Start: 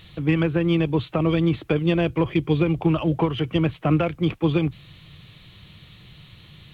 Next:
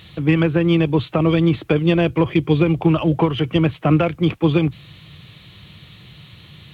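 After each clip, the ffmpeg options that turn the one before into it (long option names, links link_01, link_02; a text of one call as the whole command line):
ffmpeg -i in.wav -af "highpass=62,volume=4.5dB" out.wav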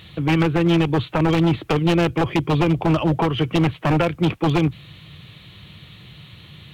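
ffmpeg -i in.wav -af "aeval=exprs='0.282*(abs(mod(val(0)/0.282+3,4)-2)-1)':channel_layout=same" out.wav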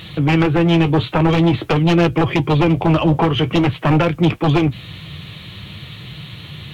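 ffmpeg -i in.wav -filter_complex "[0:a]asplit=2[link_01][link_02];[link_02]alimiter=limit=-22dB:level=0:latency=1:release=108,volume=0dB[link_03];[link_01][link_03]amix=inputs=2:normalize=0,acontrast=79,flanger=delay=5.8:depth=6.9:regen=-54:speed=0.48:shape=triangular" out.wav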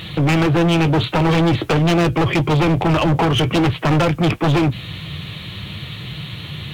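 ffmpeg -i in.wav -af "volume=16.5dB,asoftclip=hard,volume=-16.5dB,volume=3.5dB" out.wav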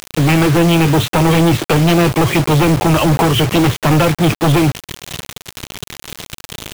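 ffmpeg -i in.wav -af "acrusher=bits=3:mix=0:aa=0.000001,volume=2dB" out.wav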